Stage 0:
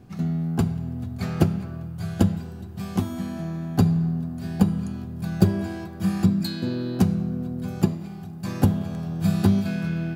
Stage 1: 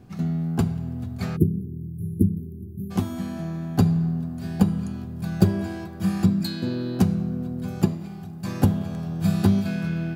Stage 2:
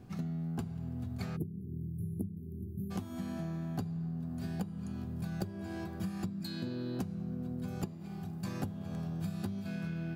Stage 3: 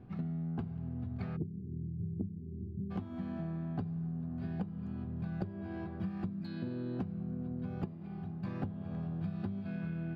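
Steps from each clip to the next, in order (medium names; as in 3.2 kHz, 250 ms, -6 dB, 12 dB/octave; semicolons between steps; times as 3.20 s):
spectral selection erased 1.36–2.91 s, 470–9700 Hz
compression 12:1, threshold -30 dBFS, peak gain reduction 19.5 dB; trim -4 dB
distance through air 380 m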